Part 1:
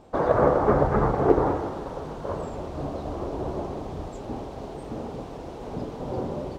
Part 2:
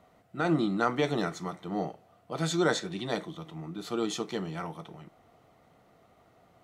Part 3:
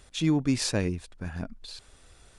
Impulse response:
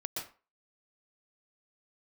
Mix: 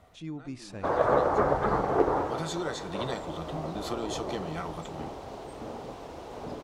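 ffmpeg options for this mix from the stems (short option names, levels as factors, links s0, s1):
-filter_complex "[0:a]lowshelf=f=410:g=-10.5,adelay=700,volume=1[s0];[1:a]acompressor=threshold=0.0126:ratio=4,lowshelf=f=120:t=q:w=1.5:g=8,dynaudnorm=f=150:g=3:m=1.58,volume=1.19[s1];[2:a]highshelf=f=3900:g=-6.5,volume=0.2,asplit=2[s2][s3];[s3]apad=whole_len=292483[s4];[s1][s4]sidechaincompress=threshold=0.00158:ratio=6:attack=6.4:release=293[s5];[s0][s5][s2]amix=inputs=3:normalize=0"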